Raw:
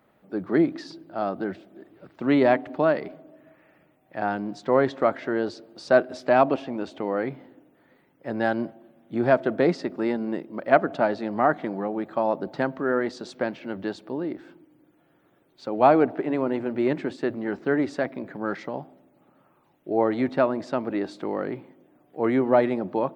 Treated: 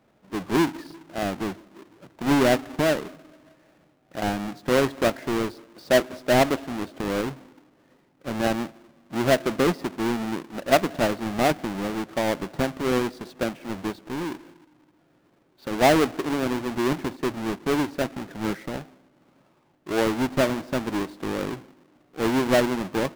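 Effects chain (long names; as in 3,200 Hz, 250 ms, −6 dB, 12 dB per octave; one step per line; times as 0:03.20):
each half-wave held at its own peak
high-shelf EQ 4,100 Hz −7 dB
level −4 dB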